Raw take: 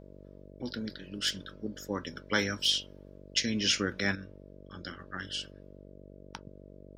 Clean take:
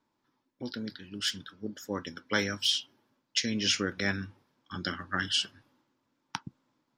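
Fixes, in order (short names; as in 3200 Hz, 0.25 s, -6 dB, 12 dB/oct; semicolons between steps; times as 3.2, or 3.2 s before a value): de-hum 48.2 Hz, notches 13; gain 0 dB, from 4.15 s +8.5 dB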